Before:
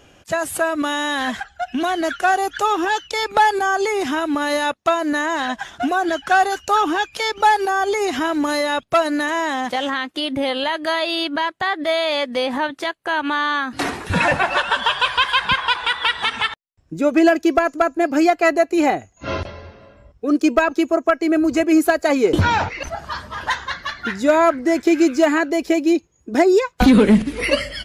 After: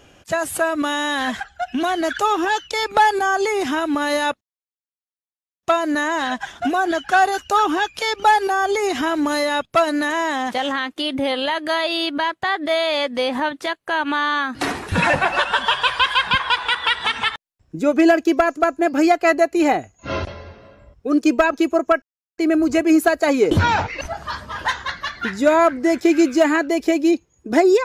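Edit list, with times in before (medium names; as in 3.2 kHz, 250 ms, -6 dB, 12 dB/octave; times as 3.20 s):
2.13–2.53 s: delete
4.81 s: insert silence 1.22 s
21.20 s: insert silence 0.36 s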